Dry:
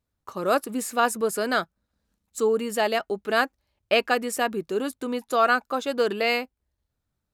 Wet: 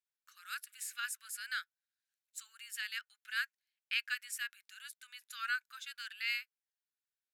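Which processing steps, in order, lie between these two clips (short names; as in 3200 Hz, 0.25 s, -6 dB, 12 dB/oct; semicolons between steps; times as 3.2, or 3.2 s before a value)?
Chebyshev high-pass 1500 Hz, order 5; gain -9 dB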